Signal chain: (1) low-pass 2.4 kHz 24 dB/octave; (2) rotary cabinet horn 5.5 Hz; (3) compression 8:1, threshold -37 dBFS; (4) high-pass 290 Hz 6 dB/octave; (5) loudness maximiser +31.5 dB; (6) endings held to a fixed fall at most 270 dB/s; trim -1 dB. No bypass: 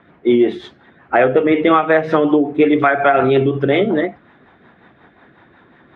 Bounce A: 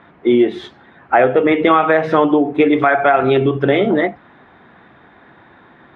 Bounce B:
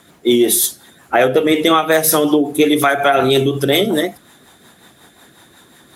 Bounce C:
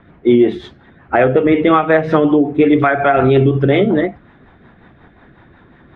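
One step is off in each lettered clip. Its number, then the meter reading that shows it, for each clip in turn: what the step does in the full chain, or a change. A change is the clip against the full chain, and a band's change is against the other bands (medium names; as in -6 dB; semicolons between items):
2, 1 kHz band +1.5 dB; 1, 4 kHz band +12.5 dB; 4, 125 Hz band +7.0 dB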